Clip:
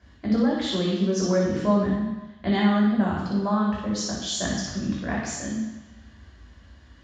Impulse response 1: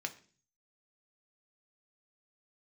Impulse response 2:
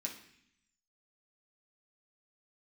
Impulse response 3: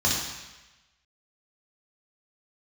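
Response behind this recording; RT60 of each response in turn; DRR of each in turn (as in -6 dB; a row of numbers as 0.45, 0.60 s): 3; 0.40, 0.65, 1.1 s; 5.0, -2.0, -5.0 dB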